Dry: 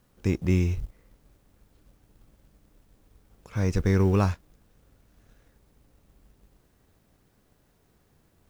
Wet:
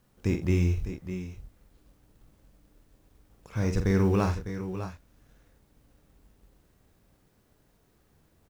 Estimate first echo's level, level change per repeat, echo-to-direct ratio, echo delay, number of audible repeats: -7.0 dB, no steady repeat, -5.0 dB, 46 ms, 3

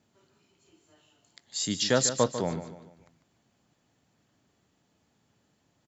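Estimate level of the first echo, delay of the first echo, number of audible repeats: -11.0 dB, 0.147 s, 4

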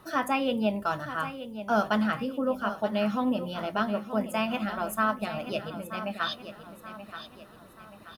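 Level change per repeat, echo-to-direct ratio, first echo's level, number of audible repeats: -7.0 dB, -10.5 dB, -11.5 dB, 4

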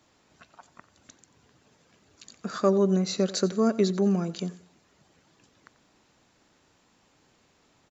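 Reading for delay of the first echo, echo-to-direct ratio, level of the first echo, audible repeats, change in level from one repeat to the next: 90 ms, -17.5 dB, -18.0 dB, 2, -9.5 dB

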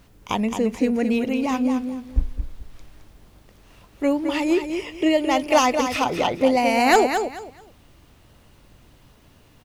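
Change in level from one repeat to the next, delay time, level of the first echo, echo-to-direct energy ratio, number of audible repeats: -13.0 dB, 0.217 s, -7.5 dB, -7.5 dB, 3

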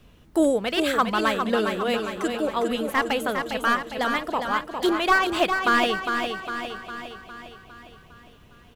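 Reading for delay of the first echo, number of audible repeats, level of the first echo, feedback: 0.406 s, 9, -6.0 dB, no steady repeat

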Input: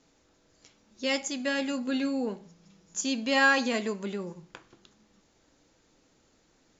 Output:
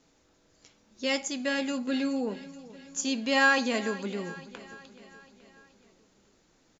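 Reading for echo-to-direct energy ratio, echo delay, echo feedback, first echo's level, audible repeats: -16.0 dB, 0.426 s, 57%, -17.5 dB, 4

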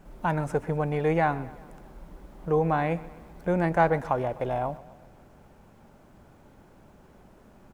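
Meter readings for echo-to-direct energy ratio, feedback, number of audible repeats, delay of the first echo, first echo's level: -18.0 dB, 56%, 4, 0.127 s, -19.5 dB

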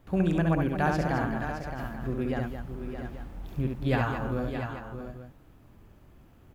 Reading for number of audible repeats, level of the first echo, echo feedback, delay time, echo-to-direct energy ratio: 5, -3.5 dB, no steady repeat, 68 ms, -1.0 dB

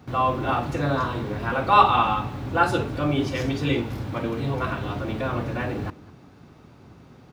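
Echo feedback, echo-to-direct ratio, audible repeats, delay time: no steady repeat, -21.0 dB, 1, 0.202 s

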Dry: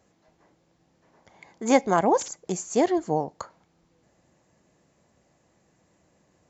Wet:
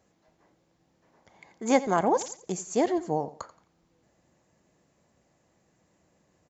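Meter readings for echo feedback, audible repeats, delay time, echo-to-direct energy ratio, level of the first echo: 30%, 2, 87 ms, -16.0 dB, -16.5 dB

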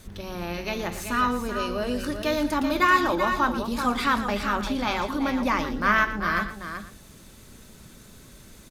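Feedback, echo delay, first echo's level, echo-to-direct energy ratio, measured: no steady repeat, 0.116 s, -13.0 dB, -6.5 dB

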